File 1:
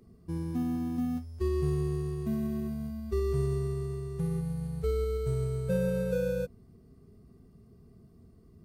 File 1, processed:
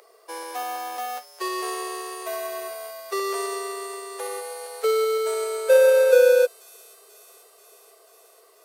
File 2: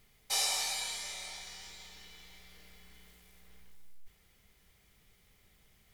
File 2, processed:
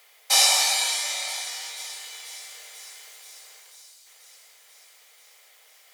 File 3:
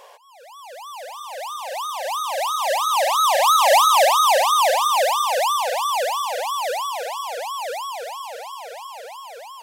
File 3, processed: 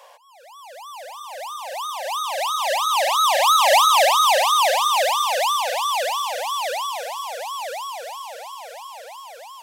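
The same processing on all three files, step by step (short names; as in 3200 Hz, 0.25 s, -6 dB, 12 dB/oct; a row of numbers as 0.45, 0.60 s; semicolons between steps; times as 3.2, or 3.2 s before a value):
dynamic EQ 3100 Hz, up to +4 dB, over -31 dBFS, Q 0.79; steep high-pass 490 Hz 48 dB/oct; thin delay 0.487 s, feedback 72%, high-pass 5200 Hz, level -14 dB; normalise peaks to -6 dBFS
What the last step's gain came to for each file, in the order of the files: +18.5, +13.0, -1.5 dB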